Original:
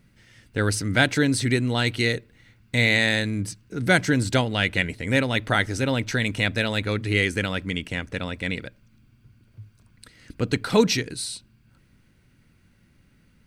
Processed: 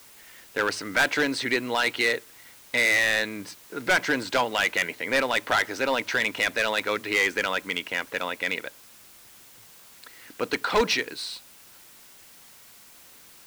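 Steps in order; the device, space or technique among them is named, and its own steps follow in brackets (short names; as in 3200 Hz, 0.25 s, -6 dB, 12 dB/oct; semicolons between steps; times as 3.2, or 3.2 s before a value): drive-through speaker (BPF 470–4000 Hz; bell 1000 Hz +5.5 dB 0.52 oct; hard clip -20 dBFS, distortion -8 dB; white noise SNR 23 dB); gain +3.5 dB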